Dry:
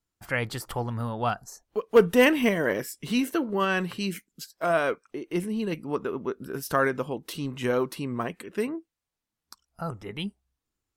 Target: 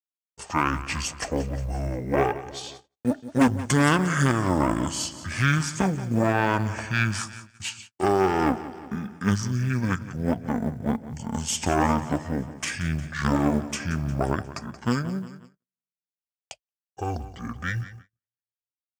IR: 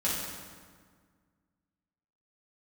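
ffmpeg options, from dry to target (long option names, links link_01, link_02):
-filter_complex "[0:a]aeval=exprs='0.398*(cos(1*acos(clip(val(0)/0.398,-1,1)))-cos(1*PI/2))+0.02*(cos(3*acos(clip(val(0)/0.398,-1,1)))-cos(3*PI/2))+0.1*(cos(4*acos(clip(val(0)/0.398,-1,1)))-cos(4*PI/2))+0.0112*(cos(5*acos(clip(val(0)/0.398,-1,1)))-cos(5*PI/2))+0.00501*(cos(8*acos(clip(val(0)/0.398,-1,1)))-cos(8*PI/2))':channel_layout=same,alimiter=limit=-13dB:level=0:latency=1:release=145,highshelf=frequency=2500:gain=7.5,asetrate=25442,aresample=44100,equalizer=frequency=3900:width_type=o:width=0.45:gain=-7.5,asplit=2[link_01][link_02];[link_02]aecho=0:1:178|356|534|712|890:0.178|0.0996|0.0558|0.0312|0.0175[link_03];[link_01][link_03]amix=inputs=2:normalize=0,agate=range=-51dB:threshold=-45dB:ratio=16:detection=peak,highpass=frequency=48:width=0.5412,highpass=frequency=48:width=1.3066,acrusher=bits=9:mode=log:mix=0:aa=0.000001,volume=3dB"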